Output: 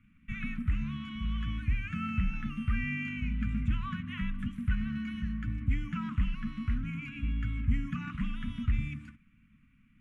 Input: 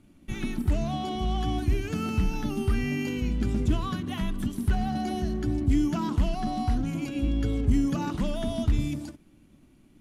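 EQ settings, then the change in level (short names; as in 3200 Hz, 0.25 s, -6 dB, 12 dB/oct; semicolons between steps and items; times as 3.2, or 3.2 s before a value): elliptic band-stop 230–1200 Hz, stop band 40 dB; LPF 8300 Hz 12 dB/oct; resonant high shelf 3300 Hz -12 dB, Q 3; -4.0 dB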